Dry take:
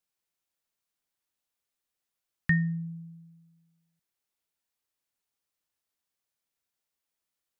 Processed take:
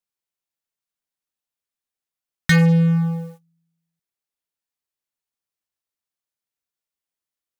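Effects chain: in parallel at -0.5 dB: compression 6:1, threshold -35 dBFS, peak gain reduction 14.5 dB; on the sum: waveshaping leveller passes 5

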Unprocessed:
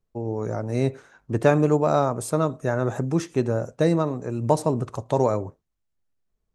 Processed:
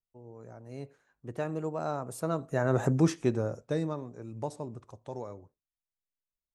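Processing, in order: Doppler pass-by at 2.92 s, 15 m/s, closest 3.8 m

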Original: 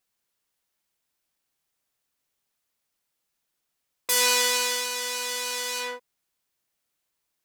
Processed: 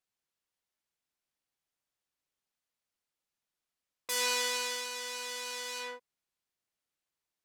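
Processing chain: treble shelf 11 kHz -9.5 dB; trim -8 dB

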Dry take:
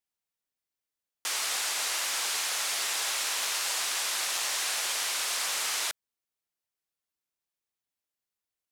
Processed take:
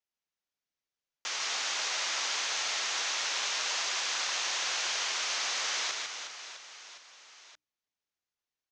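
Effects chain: elliptic low-pass 6.5 kHz, stop band 70 dB; hum notches 60/120/180/240/300 Hz; on a send: reverse bouncing-ball echo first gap 150 ms, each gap 1.4×, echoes 5; on the sum: trim -2 dB

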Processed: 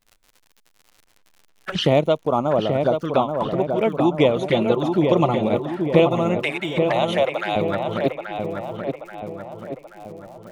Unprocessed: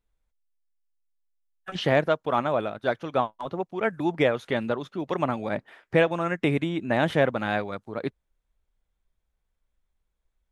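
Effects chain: 2.24–3.05 s: time-frequency box 1.5–4.3 kHz -11 dB; 4.46–5.38 s: comb 5.8 ms, depth 96%; 6.42–7.56 s: steep high-pass 550 Hz 36 dB/octave; in parallel at +1.5 dB: compression 12:1, threshold -29 dBFS, peak gain reduction 14.5 dB; on the sum: crackle 45 per s -37 dBFS; touch-sensitive flanger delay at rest 9.8 ms, full sweep at -20.5 dBFS; on a send: filtered feedback delay 831 ms, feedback 56%, low-pass 2.2 kHz, level -5 dB; on the sum: trim +4 dB

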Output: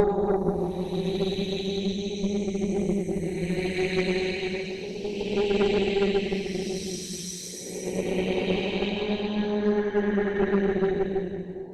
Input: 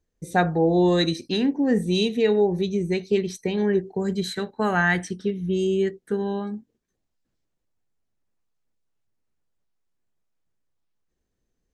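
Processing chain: Paulstretch 8.2×, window 0.25 s, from 2.45 s; Chebyshev shaper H 4 -19 dB, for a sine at -9.5 dBFS; harmonic-percussive split harmonic -11 dB; trim +7 dB

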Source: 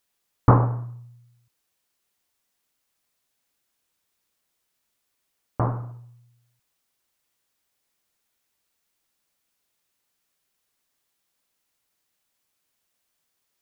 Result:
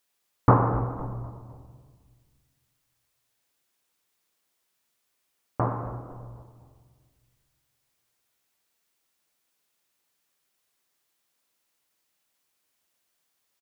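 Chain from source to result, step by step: bass shelf 130 Hz -7.5 dB; frequency-shifting echo 253 ms, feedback 45%, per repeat -65 Hz, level -16 dB; on a send at -7 dB: reverberation RT60 1.7 s, pre-delay 69 ms

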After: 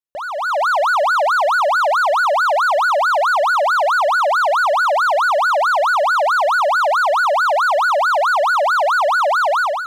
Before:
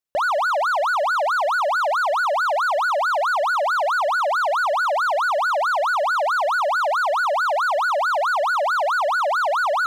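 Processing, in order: level rider gain up to 14 dB; trim -7.5 dB

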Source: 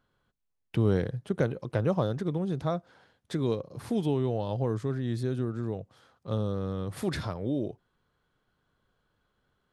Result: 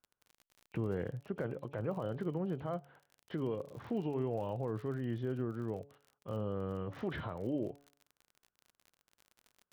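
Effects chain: knee-point frequency compression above 2.2 kHz 1.5:1; gate -54 dBFS, range -14 dB; bass shelf 290 Hz -8.5 dB; peak limiter -25.5 dBFS, peak gain reduction 9.5 dB; distance through air 450 m; de-hum 141.8 Hz, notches 6; crackle 40 per s -46 dBFS

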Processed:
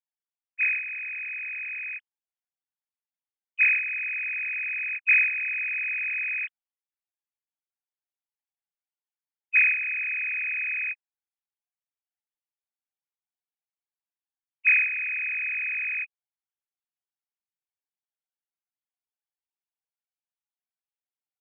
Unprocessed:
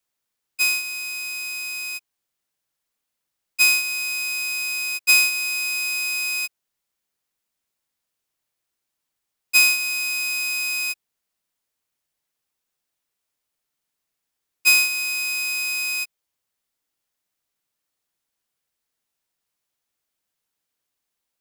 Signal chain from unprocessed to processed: formants replaced by sine waves; dynamic bell 670 Hz, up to -6 dB, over -46 dBFS, Q 1.9; trim -4 dB

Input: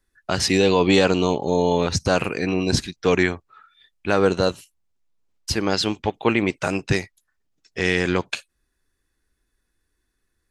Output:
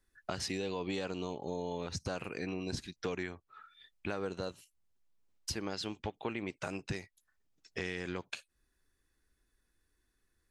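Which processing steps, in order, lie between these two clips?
compression 4:1, threshold -33 dBFS, peak gain reduction 17.5 dB; trim -4 dB

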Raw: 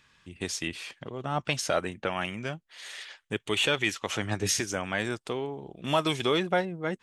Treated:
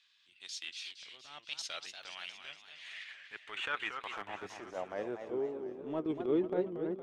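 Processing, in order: band-pass sweep 3.8 kHz -> 340 Hz, 2.29–5.61 s; transient shaper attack -10 dB, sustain -6 dB; modulated delay 234 ms, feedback 57%, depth 201 cents, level -8 dB; trim +1 dB

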